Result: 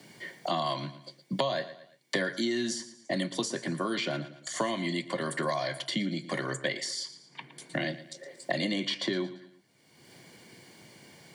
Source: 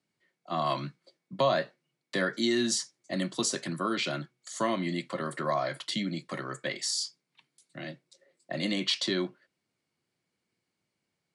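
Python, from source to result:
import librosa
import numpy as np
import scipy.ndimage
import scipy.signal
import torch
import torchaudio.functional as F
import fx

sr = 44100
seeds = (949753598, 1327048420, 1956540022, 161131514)

y = fx.peak_eq(x, sr, hz=130.0, db=4.5, octaves=0.22)
y = fx.notch_comb(y, sr, f0_hz=1300.0)
y = fx.echo_feedback(y, sr, ms=114, feedback_pct=27, wet_db=-17)
y = fx.band_squash(y, sr, depth_pct=100)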